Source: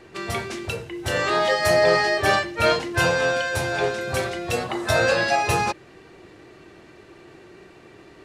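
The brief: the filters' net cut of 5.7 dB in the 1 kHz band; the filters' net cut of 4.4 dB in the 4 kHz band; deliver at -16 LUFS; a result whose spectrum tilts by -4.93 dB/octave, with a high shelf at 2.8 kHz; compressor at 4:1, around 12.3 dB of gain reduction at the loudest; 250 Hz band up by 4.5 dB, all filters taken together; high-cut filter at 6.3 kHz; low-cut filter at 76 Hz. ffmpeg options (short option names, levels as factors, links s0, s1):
-af "highpass=76,lowpass=6300,equalizer=f=250:t=o:g=8,equalizer=f=1000:t=o:g=-9,highshelf=f=2800:g=5,equalizer=f=4000:t=o:g=-8.5,acompressor=threshold=0.0282:ratio=4,volume=7.08"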